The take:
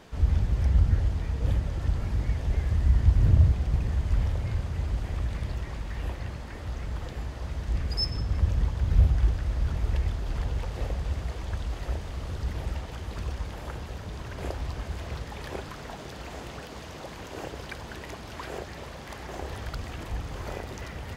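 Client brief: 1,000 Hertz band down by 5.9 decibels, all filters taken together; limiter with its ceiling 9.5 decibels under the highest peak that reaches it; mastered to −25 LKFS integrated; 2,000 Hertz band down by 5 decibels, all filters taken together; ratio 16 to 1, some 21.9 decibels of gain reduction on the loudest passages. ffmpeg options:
ffmpeg -i in.wav -af "equalizer=frequency=1000:width_type=o:gain=-7,equalizer=frequency=2000:width_type=o:gain=-4,acompressor=threshold=-36dB:ratio=16,volume=20.5dB,alimiter=limit=-15.5dB:level=0:latency=1" out.wav

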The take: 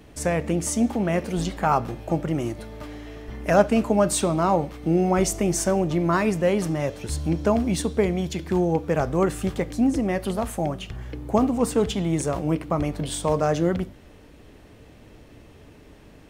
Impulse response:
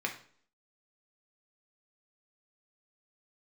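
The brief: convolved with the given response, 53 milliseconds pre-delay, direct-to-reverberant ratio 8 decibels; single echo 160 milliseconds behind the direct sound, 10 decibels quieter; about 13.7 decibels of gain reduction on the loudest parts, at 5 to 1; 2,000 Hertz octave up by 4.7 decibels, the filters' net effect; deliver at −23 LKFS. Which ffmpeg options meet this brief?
-filter_complex "[0:a]equalizer=frequency=2000:width_type=o:gain=6,acompressor=threshold=-27dB:ratio=5,aecho=1:1:160:0.316,asplit=2[link_01][link_02];[1:a]atrim=start_sample=2205,adelay=53[link_03];[link_02][link_03]afir=irnorm=-1:irlink=0,volume=-13dB[link_04];[link_01][link_04]amix=inputs=2:normalize=0,volume=7.5dB"

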